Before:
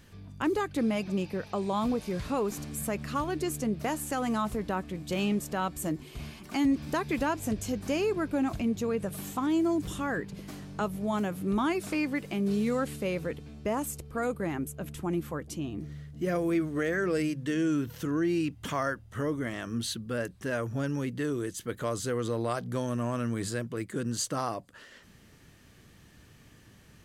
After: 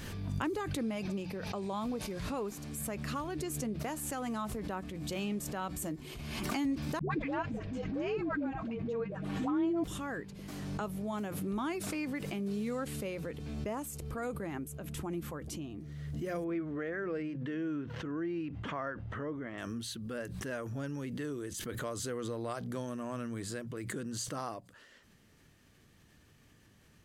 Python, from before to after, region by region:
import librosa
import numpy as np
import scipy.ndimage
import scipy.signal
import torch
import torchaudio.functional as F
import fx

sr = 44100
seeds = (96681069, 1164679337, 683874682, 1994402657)

y = fx.chain(x, sr, fx.lowpass(hz=2500.0, slope=12),
    fx.comb(ms=6.3, depth=0.45),
    fx.dispersion(late='highs', ms=119.0, hz=430.0), at=(6.99, 9.84))
y = fx.chain(y, sr, fx.lowpass(hz=2200.0, slope=12),
    fx.low_shelf(hz=110.0, db=-7.5),
    fx.sustainer(db_per_s=130.0), at=(16.44, 19.58))
y = fx.hum_notches(y, sr, base_hz=60, count=3)
y = fx.pre_swell(y, sr, db_per_s=27.0)
y = y * librosa.db_to_amplitude(-7.5)